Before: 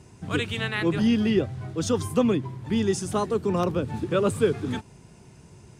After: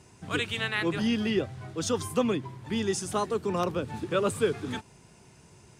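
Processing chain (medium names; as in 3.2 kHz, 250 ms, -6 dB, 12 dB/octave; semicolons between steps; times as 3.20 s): bass shelf 450 Hz -7.5 dB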